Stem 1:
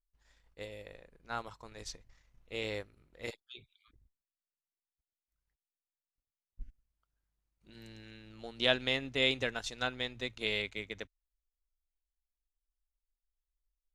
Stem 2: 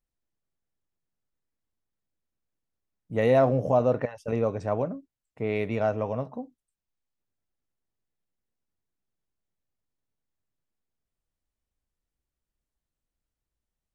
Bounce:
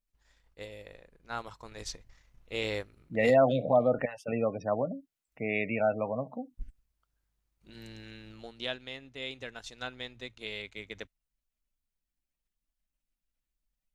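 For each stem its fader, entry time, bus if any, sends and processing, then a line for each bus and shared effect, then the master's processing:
-5.5 dB, 0.00 s, no send, vocal rider
+2.0 dB, 0.00 s, no send, fifteen-band EQ 400 Hz -8 dB, 1000 Hz -5 dB, 2500 Hz +4 dB; spectral gate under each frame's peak -25 dB strong; Bessel high-pass 230 Hz, order 2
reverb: off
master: dry

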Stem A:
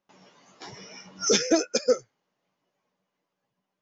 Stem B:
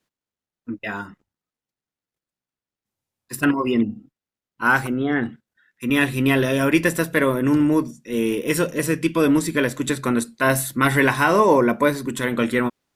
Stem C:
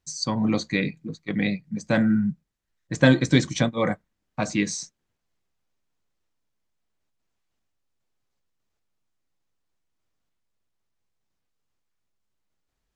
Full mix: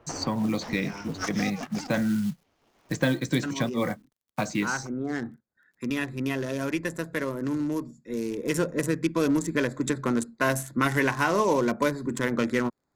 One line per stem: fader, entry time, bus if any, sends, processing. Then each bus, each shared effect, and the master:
-3.0 dB, 0.00 s, no send, cycle switcher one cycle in 2, inverted; tilt -1.5 dB/oct; negative-ratio compressor -32 dBFS, ratio -1; auto duck -7 dB, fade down 0.80 s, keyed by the third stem
8.37 s -15.5 dB -> 8.59 s -4.5 dB, 0.00 s, no send, Wiener smoothing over 15 samples; bell 6400 Hz +10 dB 0.66 oct
-6.5 dB, 0.00 s, no send, companded quantiser 6-bit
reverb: off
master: three-band squash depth 70%

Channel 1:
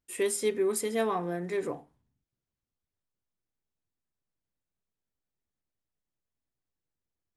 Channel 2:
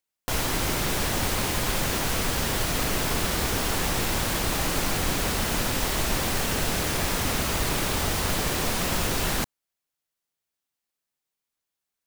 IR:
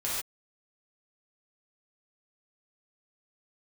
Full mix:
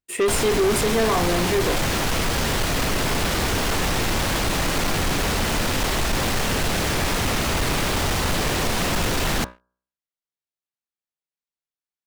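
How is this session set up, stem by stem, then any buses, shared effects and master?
+2.0 dB, 0.00 s, no send, dry
-4.5 dB, 0.00 s, no send, dry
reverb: off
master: high shelf 8500 Hz -9 dB; de-hum 61.62 Hz, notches 27; sample leveller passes 3

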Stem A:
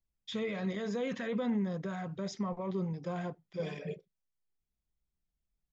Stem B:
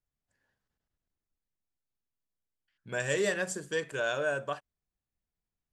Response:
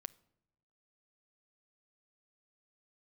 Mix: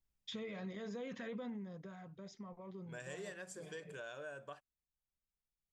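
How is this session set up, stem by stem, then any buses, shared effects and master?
1.42 s -0.5 dB -> 1.97 s -13.5 dB, 0.00 s, no send, dry
-12.5 dB, 0.00 s, no send, dry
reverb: off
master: compressor 3:1, threshold -45 dBFS, peak gain reduction 11 dB

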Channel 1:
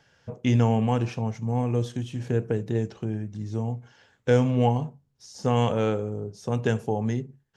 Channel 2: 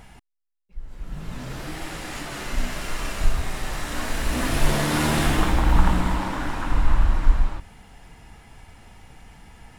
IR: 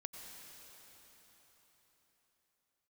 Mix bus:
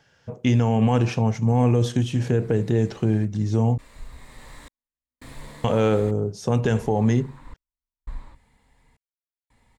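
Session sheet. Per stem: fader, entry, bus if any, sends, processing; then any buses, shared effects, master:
+1.0 dB, 0.00 s, muted 3.78–5.64, no send, AGC gain up to 8.5 dB
-15.0 dB, 0.75 s, no send, ripple EQ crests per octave 1, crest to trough 8 dB; step gate ".xxxxx.." 84 bpm -60 dB; auto duck -7 dB, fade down 0.75 s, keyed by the first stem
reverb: off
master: limiter -10.5 dBFS, peak gain reduction 8 dB

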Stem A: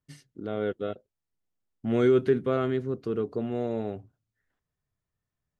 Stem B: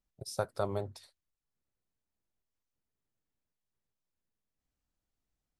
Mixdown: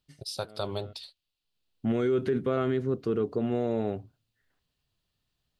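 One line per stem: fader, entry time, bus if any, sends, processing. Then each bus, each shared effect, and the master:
+3.0 dB, 0.00 s, no send, auto duck -22 dB, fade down 0.25 s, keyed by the second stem
+1.0 dB, 0.00 s, no send, band shelf 3500 Hz +14 dB 1.1 oct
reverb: off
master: limiter -18.5 dBFS, peak gain reduction 9 dB

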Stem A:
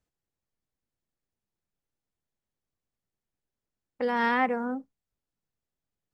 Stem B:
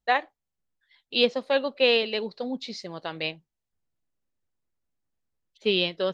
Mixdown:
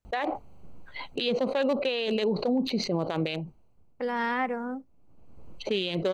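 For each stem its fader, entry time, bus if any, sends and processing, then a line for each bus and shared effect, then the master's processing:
-2.5 dB, 0.00 s, no send, dry
-0.5 dB, 0.05 s, no send, Wiener smoothing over 25 samples; notch 5200 Hz, Q 5.8; fast leveller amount 70%; auto duck -22 dB, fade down 0.80 s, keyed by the first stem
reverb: off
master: limiter -18.5 dBFS, peak gain reduction 12.5 dB

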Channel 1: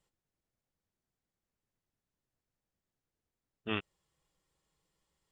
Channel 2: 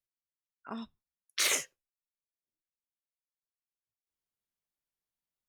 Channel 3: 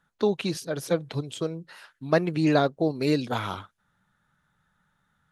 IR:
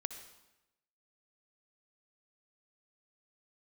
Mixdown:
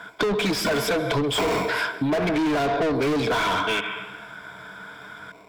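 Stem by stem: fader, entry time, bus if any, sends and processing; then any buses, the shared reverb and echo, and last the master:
-3.0 dB, 0.00 s, send -8 dB, LPF 2400 Hz 12 dB/oct; tilt shelf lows -10 dB, about 1200 Hz
-1.0 dB, 0.00 s, send -4.5 dB, low-pass opened by the level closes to 2000 Hz; sample-and-hold 27×; three-band squash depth 70%
-3.5 dB, 0.00 s, send -7.5 dB, dry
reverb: on, RT60 0.95 s, pre-delay 56 ms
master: ripple EQ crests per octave 1.7, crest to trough 13 dB; overdrive pedal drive 39 dB, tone 2200 Hz, clips at -5.5 dBFS; compressor, threshold -22 dBFS, peak gain reduction 11 dB

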